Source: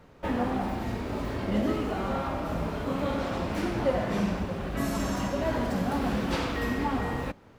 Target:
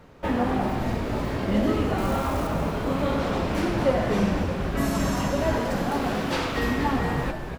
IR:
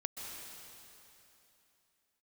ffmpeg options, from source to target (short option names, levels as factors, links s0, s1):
-filter_complex "[0:a]asettb=1/sr,asplit=3[s0][s1][s2];[s0]atrim=end=1.984[s3];[s1]atrim=start=1.98:end=2.47,asetpts=PTS-STARTPTS,afade=t=in:d=0.004:c=qsin,afade=t=out:st=0.486:d=0.004:c=qsin,acrusher=bits=8:dc=4:mix=0:aa=0.000001[s4];[s2]atrim=start=2.466[s5];[s3][s4]acrossfade=d=0.004:c1=hsin:c2=qsin[s6];[s6][s5]acrossfade=d=0.004:c1=qsin:c2=hsin,asettb=1/sr,asplit=3[s7][s8][s9];[s7]atrim=end=5.584[s10];[s8]atrim=start=5.58:end=6.57,asetpts=PTS-STARTPTS,afade=t=in:d=0.004:c=qsin,afade=t=out:st=0.986:d=0.004:c=qsin,highpass=f=290:p=1[s11];[s9]atrim=start=6.566[s12];[s10][s11]acrossfade=d=0.004:c1=hsin:c2=qsin[s13];[s13][s12]acrossfade=d=0.004:c1=qsin:c2=hsin,asplit=7[s14][s15][s16][s17][s18][s19][s20];[s15]adelay=239,afreqshift=-120,volume=0.398[s21];[s16]adelay=478,afreqshift=-240,volume=0.214[s22];[s17]adelay=717,afreqshift=-360,volume=0.116[s23];[s18]adelay=956,afreqshift=-480,volume=0.0624[s24];[s19]adelay=1195,afreqshift=-600,volume=0.0339[s25];[s20]adelay=1434,afreqshift=-720,volume=0.0182[s26];[s14][s21][s22][s23][s24][s25][s26]amix=inputs=7:normalize=0,volume=1.58"